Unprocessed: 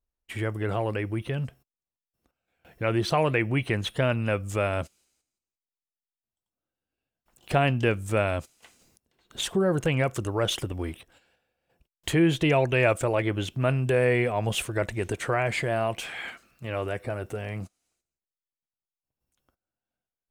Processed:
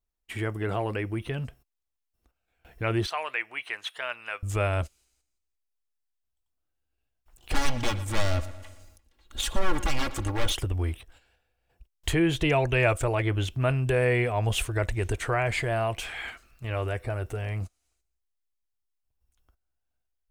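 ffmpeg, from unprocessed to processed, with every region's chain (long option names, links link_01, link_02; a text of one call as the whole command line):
ffmpeg -i in.wav -filter_complex "[0:a]asettb=1/sr,asplit=3[link_01][link_02][link_03];[link_01]atrim=end=3.064[link_04];[link_02]atrim=start=3.06:end=4.43,asetpts=PTS-STARTPTS,afade=type=in:duration=0.004:curve=qsin,afade=type=out:start_time=1.366:duration=0.004:curve=qsin,highpass=1100,highshelf=frequency=4700:gain=-7.5[link_05];[link_03]atrim=start=4.426[link_06];[link_04][link_05]acrossfade=duration=0.004:curve1=hsin:curve2=qsin[link_07];[link_07][link_06]acrossfade=duration=0.004:curve1=qsin:curve2=hsin,asettb=1/sr,asplit=3[link_08][link_09][link_10];[link_08]atrim=end=7.524[link_11];[link_09]atrim=start=7.52:end=10.52,asetpts=PTS-STARTPTS,afade=type=in:duration=0.004:curve=qsin,afade=type=out:start_time=2.996:duration=0.004:curve=qsin,aeval=exprs='0.0668*(abs(mod(val(0)/0.0668+3,4)-2)-1)':channel_layout=same,aecho=1:1:3.6:0.64,atrim=end_sample=132300,asplit=2[link_12][link_13];[link_13]adelay=116,lowpass=frequency=4900:poles=1,volume=-14.5dB,asplit=2[link_14][link_15];[link_15]adelay=116,lowpass=frequency=4900:poles=1,volume=0.54,asplit=2[link_16][link_17];[link_17]adelay=116,lowpass=frequency=4900:poles=1,volume=0.54,asplit=2[link_18][link_19];[link_19]adelay=116,lowpass=frequency=4900:poles=1,volume=0.54,asplit=2[link_20][link_21];[link_21]adelay=116,lowpass=frequency=4900:poles=1,volume=0.54[link_22];[link_12][link_14][link_16][link_18][link_20][link_22]amix=inputs=6:normalize=0,atrim=end_sample=132300[link_23];[link_10]atrim=start=10.516[link_24];[link_11][link_23]acrossfade=duration=0.004:curve1=hsin:curve2=qsin[link_25];[link_25][link_24]acrossfade=duration=0.004:curve1=qsin:curve2=hsin,bandreject=frequency=540:width=12,asubboost=boost=9.5:cutoff=57" out.wav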